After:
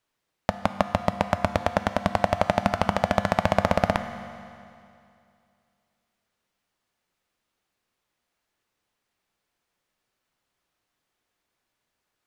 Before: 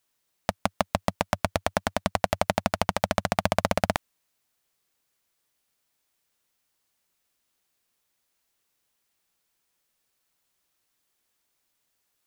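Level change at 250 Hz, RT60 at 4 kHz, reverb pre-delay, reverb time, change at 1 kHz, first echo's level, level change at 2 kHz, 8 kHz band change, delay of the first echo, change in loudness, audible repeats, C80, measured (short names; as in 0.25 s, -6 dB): +3.5 dB, 2.4 s, 9 ms, 2.5 s, +3.0 dB, none, +1.5 dB, -6.5 dB, none, +2.5 dB, none, 11.5 dB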